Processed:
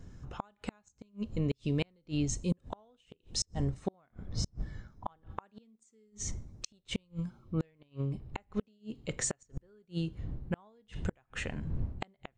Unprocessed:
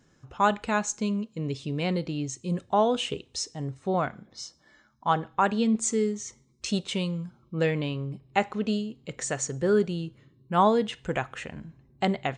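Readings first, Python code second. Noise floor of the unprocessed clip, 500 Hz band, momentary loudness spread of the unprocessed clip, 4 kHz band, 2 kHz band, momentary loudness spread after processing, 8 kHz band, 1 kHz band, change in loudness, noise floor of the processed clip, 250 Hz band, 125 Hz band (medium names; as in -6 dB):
-63 dBFS, -15.5 dB, 13 LU, -8.0 dB, -12.5 dB, 14 LU, -6.0 dB, -20.0 dB, -10.0 dB, -75 dBFS, -9.5 dB, -3.5 dB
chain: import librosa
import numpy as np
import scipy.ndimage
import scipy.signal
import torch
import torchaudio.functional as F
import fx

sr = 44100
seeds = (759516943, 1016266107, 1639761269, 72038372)

y = fx.dmg_wind(x, sr, seeds[0], corner_hz=92.0, level_db=-40.0)
y = fx.gate_flip(y, sr, shuts_db=-20.0, range_db=-39)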